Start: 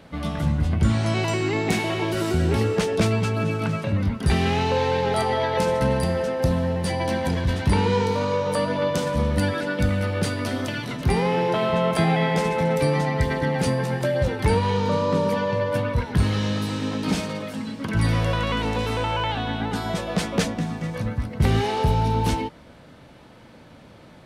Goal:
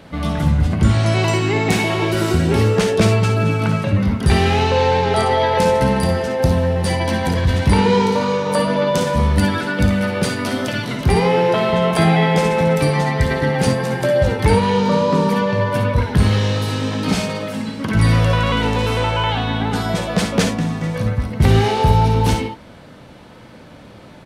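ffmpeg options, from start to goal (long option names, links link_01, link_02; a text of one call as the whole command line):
ffmpeg -i in.wav -filter_complex "[0:a]asettb=1/sr,asplit=3[link_01][link_02][link_03];[link_01]atrim=end=4.644[link_04];[link_02]atrim=start=4.64:end=5.38,asetpts=PTS-STARTPTS,afade=type=in:duration=0.004:curve=qsin,afade=type=out:start_time=0.736:duration=0.004:curve=qsin,lowpass=10000[link_05];[link_03]atrim=start=5.376[link_06];[link_04][link_05]acrossfade=duration=0.004:curve1=hsin:curve2=qsin[link_07];[link_07][link_06]acrossfade=duration=0.004:curve1=qsin:curve2=hsin,asplit=2[link_08][link_09];[link_09]aecho=0:1:56|66:0.355|0.299[link_10];[link_08][link_10]amix=inputs=2:normalize=0,volume=5.5dB" out.wav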